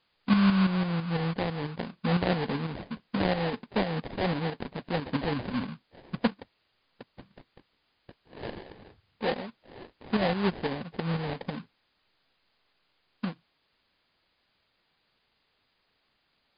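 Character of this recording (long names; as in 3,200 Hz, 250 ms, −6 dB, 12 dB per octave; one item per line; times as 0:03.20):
aliases and images of a low sample rate 1,300 Hz, jitter 20%
tremolo saw up 6 Hz, depth 55%
a quantiser's noise floor 12 bits, dither triangular
MP3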